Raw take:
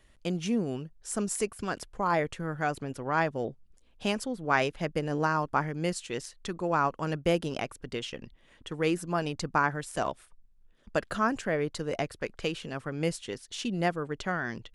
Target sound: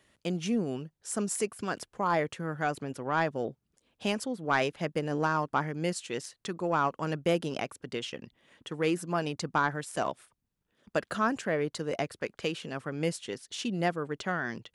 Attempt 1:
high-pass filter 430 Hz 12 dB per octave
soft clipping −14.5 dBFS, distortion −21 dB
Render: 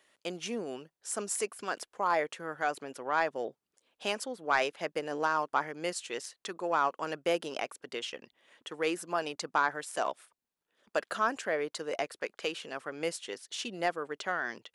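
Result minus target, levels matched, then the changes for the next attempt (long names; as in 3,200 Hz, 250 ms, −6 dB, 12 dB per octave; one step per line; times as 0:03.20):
125 Hz band −14.5 dB
change: high-pass filter 120 Hz 12 dB per octave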